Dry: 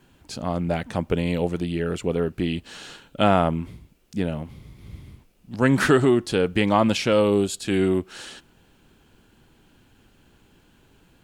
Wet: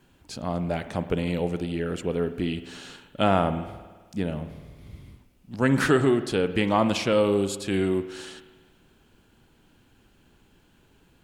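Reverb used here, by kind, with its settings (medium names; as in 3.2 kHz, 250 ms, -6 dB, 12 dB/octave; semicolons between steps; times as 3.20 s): spring tank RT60 1.4 s, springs 51 ms, chirp 70 ms, DRR 11 dB; trim -3 dB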